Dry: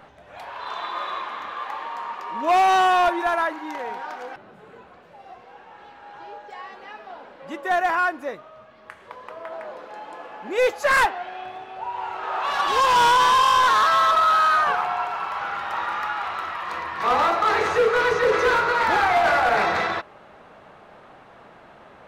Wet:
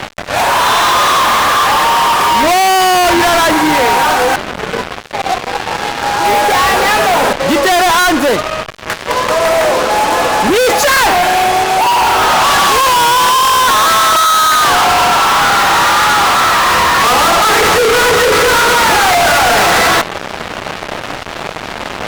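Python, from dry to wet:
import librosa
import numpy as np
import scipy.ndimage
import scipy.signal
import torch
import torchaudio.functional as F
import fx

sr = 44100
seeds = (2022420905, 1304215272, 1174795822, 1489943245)

y = fx.leveller(x, sr, passes=2, at=(6.25, 7.33))
y = fx.fuzz(y, sr, gain_db=46.0, gate_db=-45.0)
y = F.gain(torch.from_numpy(y), 4.5).numpy()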